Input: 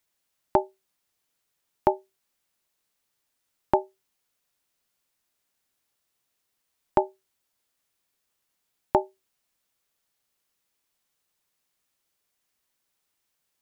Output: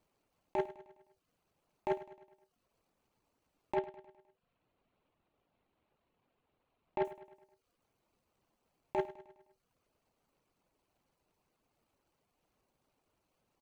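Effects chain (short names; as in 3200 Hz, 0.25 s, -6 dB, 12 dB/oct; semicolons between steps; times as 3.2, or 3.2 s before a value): median filter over 25 samples; 3.75–7.05 steep low-pass 3900 Hz; reverb removal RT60 0.6 s; negative-ratio compressor -31 dBFS, ratio -1; soft clip -26.5 dBFS, distortion -12 dB; feedback echo 0.103 s, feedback 52%, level -16 dB; gain +2 dB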